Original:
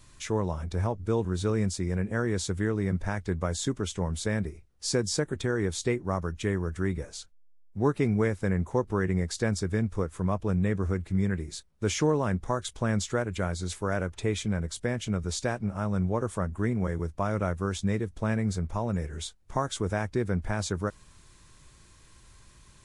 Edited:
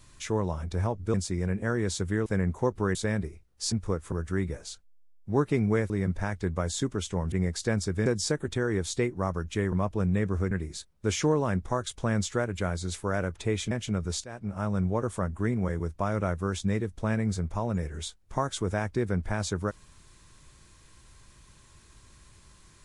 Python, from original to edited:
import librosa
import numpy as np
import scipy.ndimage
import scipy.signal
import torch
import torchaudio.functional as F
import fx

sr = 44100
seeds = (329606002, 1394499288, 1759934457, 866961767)

y = fx.edit(x, sr, fx.cut(start_s=1.14, length_s=0.49),
    fx.swap(start_s=2.75, length_s=1.42, other_s=8.38, other_length_s=0.69),
    fx.swap(start_s=4.94, length_s=1.66, other_s=9.81, other_length_s=0.4),
    fx.cut(start_s=11.0, length_s=0.29),
    fx.cut(start_s=14.49, length_s=0.41),
    fx.fade_in_from(start_s=15.43, length_s=0.37, floor_db=-19.5), tone=tone)